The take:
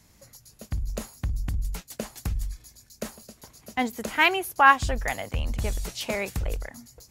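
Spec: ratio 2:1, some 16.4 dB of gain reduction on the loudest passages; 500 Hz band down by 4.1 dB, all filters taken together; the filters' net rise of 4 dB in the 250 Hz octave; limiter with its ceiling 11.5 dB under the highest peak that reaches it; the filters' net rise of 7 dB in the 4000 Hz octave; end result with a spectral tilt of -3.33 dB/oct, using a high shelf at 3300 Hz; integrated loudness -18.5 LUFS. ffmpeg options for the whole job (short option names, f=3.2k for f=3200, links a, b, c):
-af "equalizer=f=250:t=o:g=6.5,equalizer=f=500:t=o:g=-8,highshelf=f=3.3k:g=5,equalizer=f=4k:t=o:g=6.5,acompressor=threshold=-42dB:ratio=2,volume=23.5dB,alimiter=limit=-7dB:level=0:latency=1"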